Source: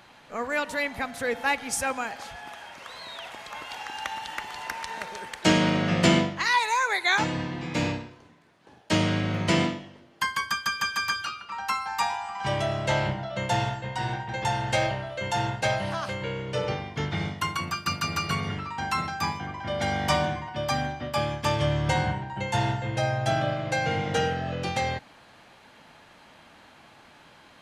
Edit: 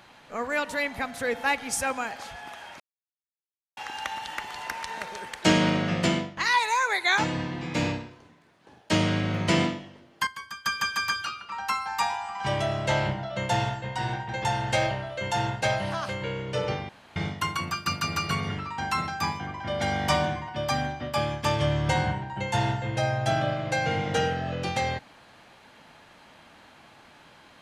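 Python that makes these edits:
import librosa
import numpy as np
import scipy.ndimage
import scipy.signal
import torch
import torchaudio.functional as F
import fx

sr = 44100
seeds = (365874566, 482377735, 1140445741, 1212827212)

y = fx.edit(x, sr, fx.silence(start_s=2.8, length_s=0.97),
    fx.fade_out_to(start_s=5.69, length_s=0.68, floor_db=-11.0),
    fx.clip_gain(start_s=10.27, length_s=0.38, db=-11.0),
    fx.room_tone_fill(start_s=16.89, length_s=0.27), tone=tone)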